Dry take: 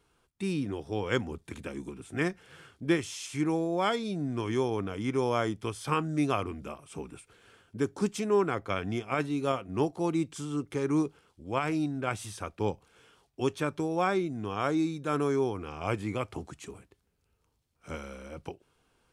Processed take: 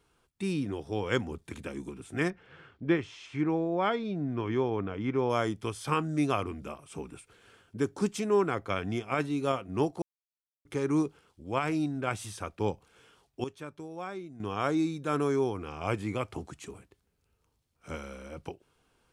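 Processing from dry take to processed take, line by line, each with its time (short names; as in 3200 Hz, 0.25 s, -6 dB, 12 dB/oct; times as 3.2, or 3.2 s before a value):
2.3–5.3 LPF 2700 Hz
10.02–10.65 mute
13.44–14.4 gain -11.5 dB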